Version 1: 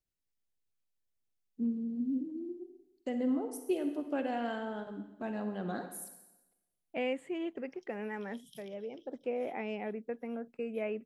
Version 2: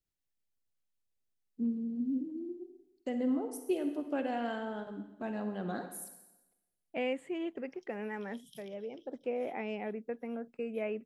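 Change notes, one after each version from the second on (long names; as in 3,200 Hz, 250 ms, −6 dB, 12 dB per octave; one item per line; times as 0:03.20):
nothing changed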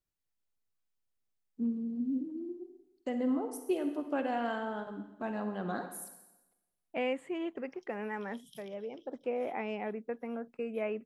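master: add parametric band 1,100 Hz +6 dB 1 octave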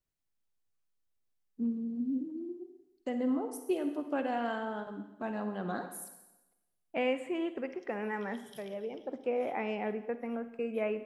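second voice: send on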